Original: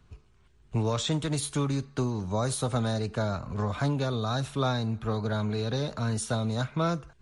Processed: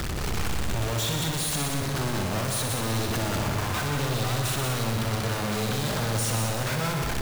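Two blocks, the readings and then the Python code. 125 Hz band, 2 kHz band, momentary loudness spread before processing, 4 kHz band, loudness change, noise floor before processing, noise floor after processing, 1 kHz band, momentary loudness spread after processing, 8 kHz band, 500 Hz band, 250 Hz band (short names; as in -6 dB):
+1.5 dB, +8.5 dB, 3 LU, +6.5 dB, +2.5 dB, -60 dBFS, -29 dBFS, +3.5 dB, 2 LU, +8.0 dB, 0.0 dB, -0.5 dB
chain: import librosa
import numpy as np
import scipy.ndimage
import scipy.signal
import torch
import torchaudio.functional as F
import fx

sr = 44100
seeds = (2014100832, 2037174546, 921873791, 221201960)

y = np.sign(x) * np.sqrt(np.mean(np.square(x)))
y = fx.echo_heads(y, sr, ms=62, heads='all three', feedback_pct=47, wet_db=-8.5)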